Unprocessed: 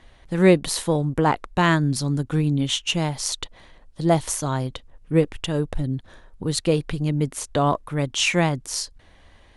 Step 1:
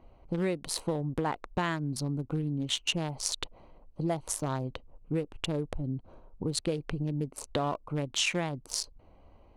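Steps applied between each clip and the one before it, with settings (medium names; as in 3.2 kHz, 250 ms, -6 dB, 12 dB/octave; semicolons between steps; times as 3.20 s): local Wiener filter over 25 samples; compression 10:1, threshold -25 dBFS, peak gain reduction 15.5 dB; bass shelf 240 Hz -5 dB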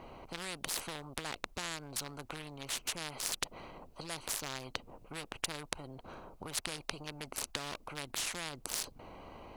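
spectrum-flattening compressor 4:1; trim +2 dB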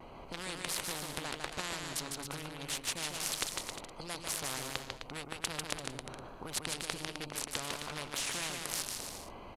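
bouncing-ball echo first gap 150 ms, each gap 0.75×, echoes 5; vibrato 1.3 Hz 48 cents; resampled via 32 kHz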